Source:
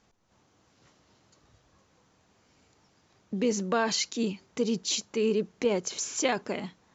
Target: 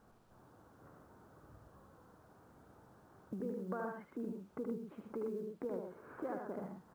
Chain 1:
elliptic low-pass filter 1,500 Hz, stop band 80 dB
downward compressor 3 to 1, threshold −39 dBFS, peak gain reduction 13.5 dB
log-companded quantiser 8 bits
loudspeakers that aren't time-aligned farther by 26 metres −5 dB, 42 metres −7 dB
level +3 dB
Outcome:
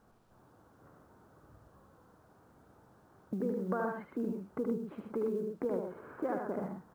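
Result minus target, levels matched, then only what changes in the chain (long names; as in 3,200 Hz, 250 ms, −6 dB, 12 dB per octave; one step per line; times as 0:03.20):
downward compressor: peak gain reduction −6.5 dB
change: downward compressor 3 to 1, threshold −49 dBFS, peak gain reduction 20 dB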